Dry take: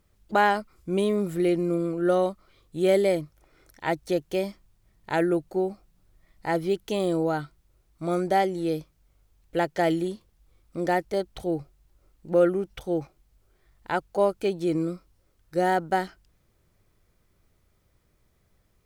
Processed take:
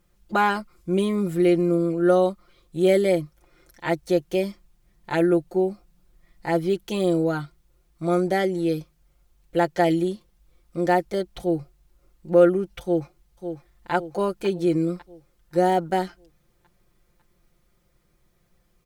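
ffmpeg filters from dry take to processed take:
ffmpeg -i in.wav -filter_complex "[0:a]asplit=2[link_01][link_02];[link_02]afade=type=in:start_time=12.82:duration=0.01,afade=type=out:start_time=13.91:duration=0.01,aecho=0:1:550|1100|1650|2200|2750|3300:0.354813|0.195147|0.107331|0.0590321|0.0324676|0.0178572[link_03];[link_01][link_03]amix=inputs=2:normalize=0,aecho=1:1:5.7:0.73" out.wav

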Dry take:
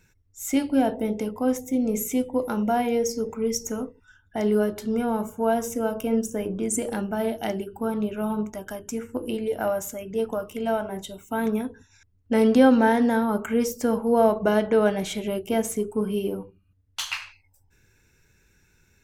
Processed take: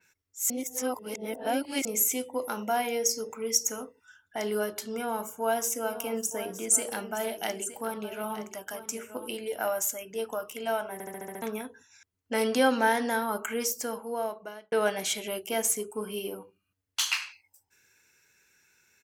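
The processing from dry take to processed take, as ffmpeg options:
ffmpeg -i in.wav -filter_complex "[0:a]asplit=3[link_01][link_02][link_03];[link_01]afade=type=out:start_time=5.86:duration=0.02[link_04];[link_02]aecho=1:1:917:0.224,afade=type=in:start_time=5.86:duration=0.02,afade=type=out:start_time=9.27:duration=0.02[link_05];[link_03]afade=type=in:start_time=9.27:duration=0.02[link_06];[link_04][link_05][link_06]amix=inputs=3:normalize=0,asplit=11[link_07][link_08][link_09][link_10][link_11][link_12][link_13][link_14][link_15][link_16][link_17];[link_07]atrim=end=0.502[link_18];[link_08]atrim=start=0.498:end=1.852,asetpts=PTS-STARTPTS,areverse[link_19];[link_09]atrim=start=1.848:end=11.002[link_20];[link_10]atrim=start=10.928:end=11.002[link_21];[link_11]atrim=start=10.928:end=11.002[link_22];[link_12]atrim=start=10.928:end=11.002[link_23];[link_13]atrim=start=10.928:end=11.002[link_24];[link_14]atrim=start=10.928:end=11.002[link_25];[link_15]atrim=start=10.928:end=11.002[link_26];[link_16]atrim=start=11.418:end=14.72,asetpts=PTS-STARTPTS,afade=type=out:start_time=2.062:duration=1.24[link_27];[link_17]atrim=start=14.72,asetpts=PTS-STARTPTS,afade=type=in:duration=0.004:curve=hsin[link_28];[link_18][link_19]acrossfade=duration=0.004:curve1=hsin:curve2=hsin[link_29];[link_29][link_20]acrossfade=duration=0.004:curve1=hsin:curve2=hsin[link_30];[link_30][link_21]acrossfade=duration=0.004:curve1=hsin:curve2=hsin[link_31];[link_31][link_22]acrossfade=duration=0.004:curve1=hsin:curve2=hsin[link_32];[link_32][link_23]acrossfade=duration=0.004:curve1=hsin:curve2=hsin[link_33];[link_33][link_24]acrossfade=duration=0.004:curve1=hsin:curve2=hsin[link_34];[link_34][link_25]acrossfade=duration=0.004:curve1=hsin:curve2=hsin[link_35];[link_35][link_26]acrossfade=duration=0.004:curve1=hsin:curve2=hsin[link_36];[link_27][link_28]concat=n=2:v=0:a=1[link_37];[link_36][link_37]acrossfade=duration=0.004:curve1=hsin:curve2=hsin,highpass=frequency=1100:poles=1,bandreject=frequency=3700:width=20,adynamicequalizer=threshold=0.00562:dfrequency=3800:dqfactor=0.7:tfrequency=3800:tqfactor=0.7:attack=5:release=100:ratio=0.375:range=2.5:mode=boostabove:tftype=highshelf,volume=1.5dB" out.wav

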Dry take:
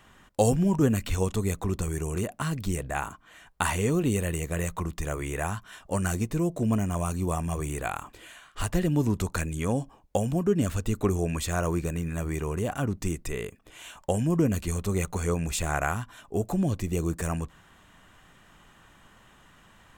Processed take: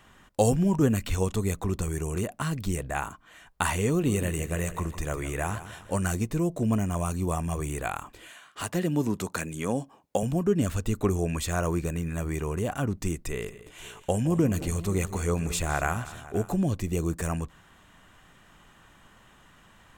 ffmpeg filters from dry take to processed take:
ffmpeg -i in.wav -filter_complex "[0:a]asettb=1/sr,asplit=3[link_01][link_02][link_03];[link_01]atrim=end=3.914[link_04];[link_02]atrim=start=3.91:end=6.07,asetpts=PTS-STARTPTS,afade=type=in:duration=0.004:curve=qsin,afade=type=out:start_time=2.156:duration=0.004:curve=qsin,aecho=1:1:157|314|471|628:0.224|0.101|0.0453|0.0204,atrim=end_sample=95256[link_05];[link_03]atrim=start=6.066[link_06];[link_04][link_05]acrossfade=duration=0.004:curve1=hsin:curve2=qsin[link_07];[link_07][link_06]acrossfade=duration=0.004:curve1=qsin:curve2=hsin,asettb=1/sr,asplit=3[link_08][link_09][link_10];[link_08]atrim=end=8.294[link_11];[link_09]atrim=start=8.29:end=10.23,asetpts=PTS-STARTPTS,afade=type=in:duration=0.004:curve=qsin,afade=type=out:start_time=1.936:duration=0.004:curve=qsin,highpass=160[link_12];[link_10]atrim=start=10.226[link_13];[link_11][link_12]acrossfade=duration=0.004:curve1=hsin:curve2=qsin[link_14];[link_14][link_13]acrossfade=duration=0.004:curve1=qsin:curve2=hsin,asettb=1/sr,asplit=3[link_15][link_16][link_17];[link_15]atrim=end=13.144[link_18];[link_16]atrim=start=13.14:end=16.56,asetpts=PTS-STARTPTS,afade=type=in:duration=0.004:curve=qsin,afade=type=out:start_time=3.416:duration=0.004:curve=qsin,aecho=1:1:165|218|527:0.133|0.126|0.126,atrim=end_sample=150822[link_19];[link_17]atrim=start=16.556[link_20];[link_18][link_19]acrossfade=duration=0.004:curve1=hsin:curve2=qsin[link_21];[link_21][link_20]acrossfade=duration=0.004:curve1=qsin:curve2=hsin" out.wav

